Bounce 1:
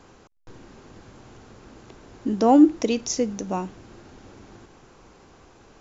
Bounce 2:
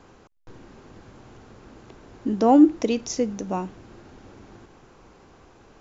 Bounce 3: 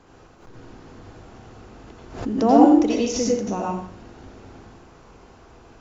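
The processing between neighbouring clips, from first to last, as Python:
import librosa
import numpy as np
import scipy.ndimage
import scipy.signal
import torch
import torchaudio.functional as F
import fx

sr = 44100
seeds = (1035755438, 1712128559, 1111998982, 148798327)

y1 = fx.high_shelf(x, sr, hz=4500.0, db=-6.0)
y2 = fx.rev_plate(y1, sr, seeds[0], rt60_s=0.59, hf_ratio=0.9, predelay_ms=75, drr_db=-3.5)
y2 = fx.pre_swell(y2, sr, db_per_s=100.0)
y2 = y2 * 10.0 ** (-2.0 / 20.0)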